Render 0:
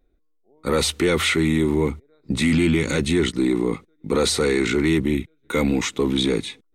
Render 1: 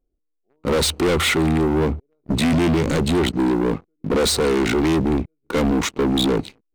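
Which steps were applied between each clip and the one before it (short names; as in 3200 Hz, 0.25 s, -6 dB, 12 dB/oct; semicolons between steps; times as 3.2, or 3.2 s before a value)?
Wiener smoothing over 25 samples; sample leveller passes 3; gain -3 dB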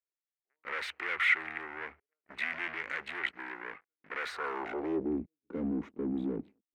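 graphic EQ 125/250/500/1000/2000/4000/8000 Hz -11/-7/-3/-3/+3/-7/-9 dB; band-pass sweep 1900 Hz -> 240 Hz, 4.22–5.22; gain -2 dB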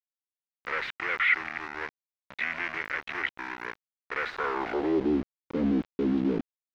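in parallel at -2.5 dB: limiter -26 dBFS, peak gain reduction 10 dB; on the sum: sample gate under -36 dBFS; air absorption 240 m; gain +3 dB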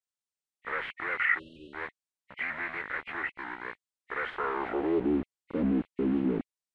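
nonlinear frequency compression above 1900 Hz 1.5:1; spectral delete 1.39–1.73, 620–2600 Hz; shaped vibrato saw up 3.2 Hz, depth 100 cents; gain -1.5 dB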